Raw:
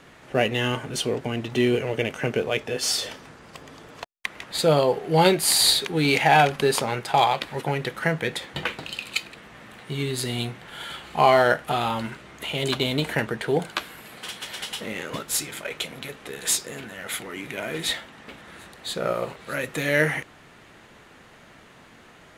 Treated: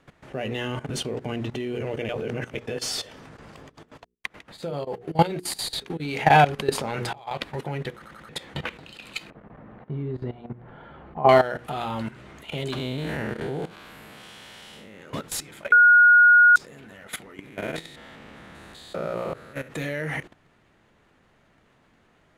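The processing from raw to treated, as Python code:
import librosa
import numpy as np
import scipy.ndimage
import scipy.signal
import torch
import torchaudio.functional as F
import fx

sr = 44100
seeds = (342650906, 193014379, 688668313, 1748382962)

y = fx.tremolo(x, sr, hz=7.1, depth=0.92, at=(3.65, 6.01), fade=0.02)
y = fx.over_compress(y, sr, threshold_db=-26.0, ratio=-0.5, at=(6.7, 7.31))
y = fx.lowpass(y, sr, hz=1000.0, slope=12, at=(9.3, 11.29))
y = fx.spec_blur(y, sr, span_ms=159.0, at=(12.76, 14.99), fade=0.02)
y = fx.spec_steps(y, sr, hold_ms=200, at=(17.47, 19.67), fade=0.02)
y = fx.edit(y, sr, fx.reverse_span(start_s=2.09, length_s=0.46),
    fx.stutter_over(start_s=7.93, slice_s=0.09, count=4),
    fx.bleep(start_s=15.72, length_s=0.84, hz=1440.0, db=-8.5), tone=tone)
y = fx.tilt_eq(y, sr, slope=-1.5)
y = fx.hum_notches(y, sr, base_hz=60, count=8)
y = fx.level_steps(y, sr, step_db=16)
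y = y * 10.0 ** (2.5 / 20.0)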